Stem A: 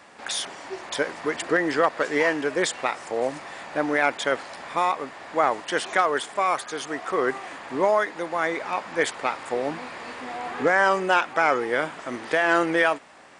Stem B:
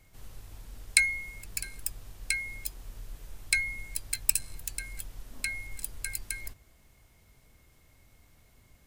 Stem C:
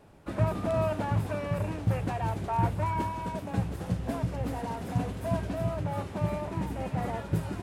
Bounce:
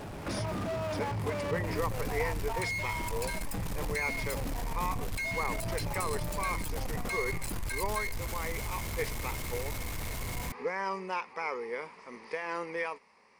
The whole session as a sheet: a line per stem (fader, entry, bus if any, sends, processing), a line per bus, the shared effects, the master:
-15.0 dB, 0.00 s, no bus, no send, rippled EQ curve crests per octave 0.86, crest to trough 13 dB
+2.0 dB, 1.65 s, bus A, no send, compression, threshold -34 dBFS, peak gain reduction 17 dB
-13.5 dB, 0.00 s, bus A, no send, none
bus A: 0.0 dB, power-law waveshaper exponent 0.5; peak limiter -29.5 dBFS, peak gain reduction 16 dB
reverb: none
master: none

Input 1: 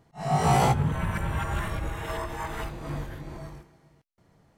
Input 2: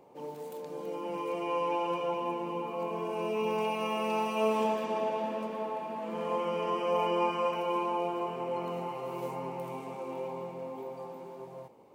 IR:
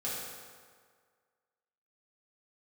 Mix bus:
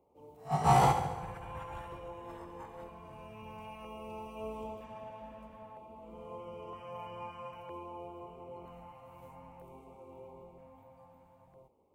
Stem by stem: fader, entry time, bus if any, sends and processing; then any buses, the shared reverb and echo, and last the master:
-5.5 dB, 0.20 s, send -14.5 dB, echo send -8.5 dB, peaking EQ 960 Hz +7 dB 0.77 oct; upward expansion 2.5:1, over -31 dBFS
-13.0 dB, 0.00 s, no send, no echo send, octave divider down 2 oct, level -5 dB; peaking EQ 4.8 kHz -8 dB 1.1 oct; LFO notch square 0.52 Hz 390–1700 Hz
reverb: on, RT60 1.8 s, pre-delay 3 ms
echo: feedback delay 70 ms, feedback 58%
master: none

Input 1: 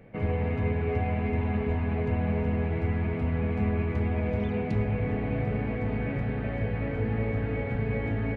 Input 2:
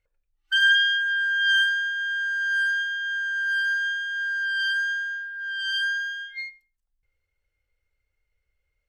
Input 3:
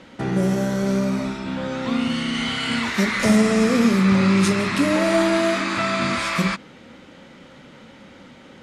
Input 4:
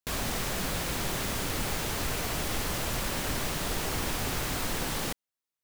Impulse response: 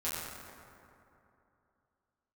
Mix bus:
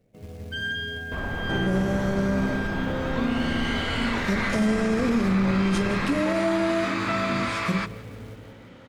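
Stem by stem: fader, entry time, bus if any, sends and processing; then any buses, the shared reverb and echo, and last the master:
-13.0 dB, 0.00 s, no send, echo send -4.5 dB, high-order bell 1.4 kHz -9.5 dB; short-mantissa float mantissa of 2-bit
-12.0 dB, 0.00 s, no send, no echo send, none
-2.5 dB, 1.30 s, no send, echo send -21 dB, treble shelf 3.4 kHz -7 dB
+2.0 dB, 1.05 s, no send, no echo send, low-pass 1.3 kHz 12 dB/octave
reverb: none
echo: feedback delay 170 ms, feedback 51%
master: peak limiter -15 dBFS, peak gain reduction 6.5 dB

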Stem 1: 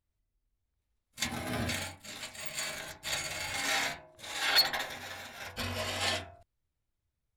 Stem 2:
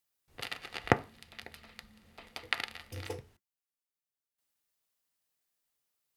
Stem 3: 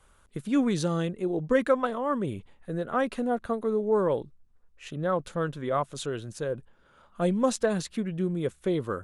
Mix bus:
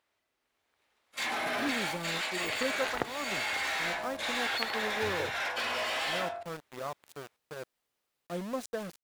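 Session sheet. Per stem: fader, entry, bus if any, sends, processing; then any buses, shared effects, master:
-4.5 dB, 0.00 s, bus A, no send, echo send -19.5 dB, overdrive pedal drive 29 dB, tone 4.6 kHz, clips at -18 dBFS
+2.5 dB, 2.10 s, bus A, no send, no echo send, tilt EQ -3.5 dB/octave; treble shelf 2.7 kHz +11.5 dB
-13.5 dB, 1.10 s, no bus, no send, no echo send, small samples zeroed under -28.5 dBFS
bus A: 0.0 dB, tone controls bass -10 dB, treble -7 dB; compression 5:1, threshold -34 dBFS, peak gain reduction 19 dB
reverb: none
echo: delay 104 ms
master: bass shelf 71 Hz -11 dB; level rider gain up to 3 dB

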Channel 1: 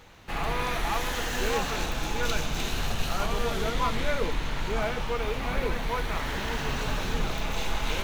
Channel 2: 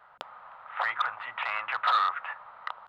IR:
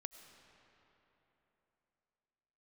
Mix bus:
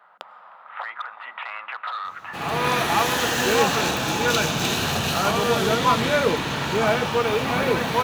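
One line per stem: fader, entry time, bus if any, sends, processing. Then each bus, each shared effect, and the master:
+0.5 dB, 2.05 s, no send, high-pass 100 Hz 24 dB/octave; band-stop 2.1 kHz, Q 12; level rider gain up to 9 dB
0.0 dB, 0.00 s, send -3.5 dB, elliptic high-pass 170 Hz; compression 3:1, threshold -33 dBFS, peak gain reduction 9 dB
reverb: on, RT60 3.6 s, pre-delay 60 ms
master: none

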